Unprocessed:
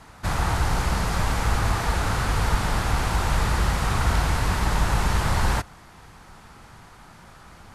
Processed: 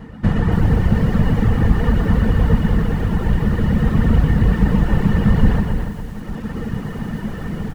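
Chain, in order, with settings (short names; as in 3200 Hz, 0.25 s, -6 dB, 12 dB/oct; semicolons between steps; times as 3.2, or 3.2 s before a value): reverb removal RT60 1 s; tone controls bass +12 dB, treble -13 dB; in parallel at -1 dB: compressor, threshold -21 dBFS, peak gain reduction 15 dB; on the sum: added noise brown -44 dBFS; AGC gain up to 10.5 dB; small resonant body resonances 210/460/1800/2900 Hz, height 14 dB, ringing for 40 ms; on a send: bouncing-ball echo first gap 0.12 s, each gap 0.9×, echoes 5; on the sum: reverb removal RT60 0.64 s; bell 320 Hz +7.5 dB 0.63 oct; notches 60/120/180/240/300 Hz; lo-fi delay 0.286 s, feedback 35%, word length 6-bit, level -8 dB; gain -5.5 dB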